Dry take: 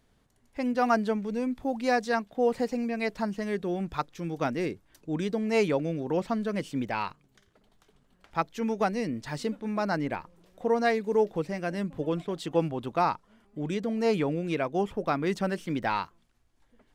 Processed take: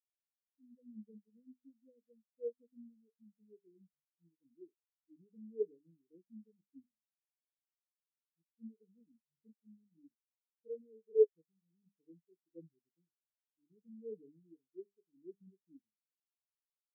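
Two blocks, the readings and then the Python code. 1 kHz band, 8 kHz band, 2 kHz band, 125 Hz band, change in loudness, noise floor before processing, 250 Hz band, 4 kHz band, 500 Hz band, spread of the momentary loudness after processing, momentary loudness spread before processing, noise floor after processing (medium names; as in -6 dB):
under -40 dB, under -30 dB, under -40 dB, under -30 dB, -10.0 dB, -67 dBFS, -27.0 dB, under -40 dB, -12.5 dB, 26 LU, 8 LU, under -85 dBFS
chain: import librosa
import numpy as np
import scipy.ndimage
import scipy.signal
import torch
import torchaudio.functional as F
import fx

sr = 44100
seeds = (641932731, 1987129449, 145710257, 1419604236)

y = scipy.signal.sosfilt(scipy.signal.ellip(3, 1.0, 40, [430.0, 6200.0], 'bandstop', fs=sr, output='sos'), x)
y = fx.hum_notches(y, sr, base_hz=50, count=9)
y = fx.spectral_expand(y, sr, expansion=4.0)
y = y * 10.0 ** (-1.0 / 20.0)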